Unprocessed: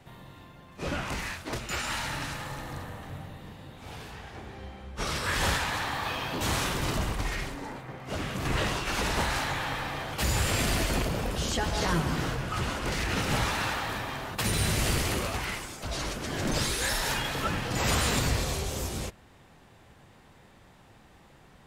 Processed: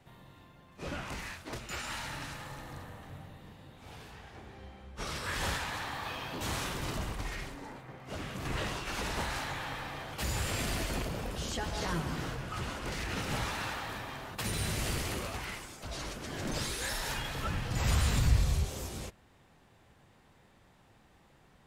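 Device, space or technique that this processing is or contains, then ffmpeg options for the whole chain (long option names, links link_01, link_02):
parallel distortion: -filter_complex "[0:a]asettb=1/sr,asplit=3[link_01][link_02][link_03];[link_01]atrim=end=16.934[link_04];[link_02]atrim=start=16.93:end=18.65,asetpts=PTS-STARTPTS,afade=type=in:duration=0.004:curve=qsin,afade=type=out:start_time=1.716:duration=0.004:curve=qsin,asubboost=boost=9:cutoff=160[link_05];[link_03]atrim=start=18.646[link_06];[link_04][link_05]acrossfade=duration=0.004:curve1=hsin:curve2=qsin[link_07];[link_07][link_06]acrossfade=duration=0.004:curve1=qsin:curve2=hsin,asplit=2[link_08][link_09];[link_09]asoftclip=type=hard:threshold=-19dB,volume=-13dB[link_10];[link_08][link_10]amix=inputs=2:normalize=0,volume=-8.5dB"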